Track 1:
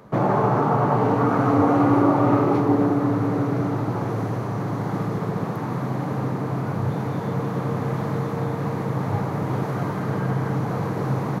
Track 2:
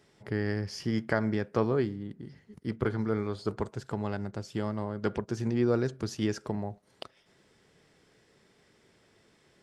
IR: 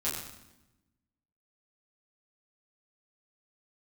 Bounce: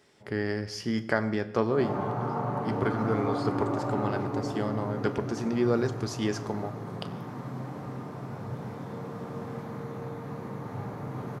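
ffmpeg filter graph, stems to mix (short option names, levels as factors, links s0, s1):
-filter_complex "[0:a]adelay=1650,volume=0.178,asplit=2[s0][s1];[s1]volume=0.398[s2];[1:a]lowshelf=f=170:g=-8.5,volume=1.19,asplit=2[s3][s4];[s4]volume=0.188[s5];[2:a]atrim=start_sample=2205[s6];[s2][s5]amix=inputs=2:normalize=0[s7];[s7][s6]afir=irnorm=-1:irlink=0[s8];[s0][s3][s8]amix=inputs=3:normalize=0"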